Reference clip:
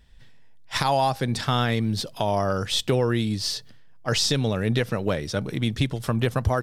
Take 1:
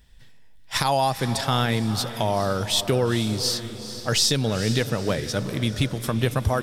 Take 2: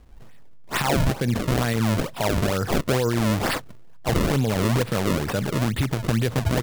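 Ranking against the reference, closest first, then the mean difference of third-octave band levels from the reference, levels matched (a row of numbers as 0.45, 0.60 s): 1, 2; 5.5, 9.0 dB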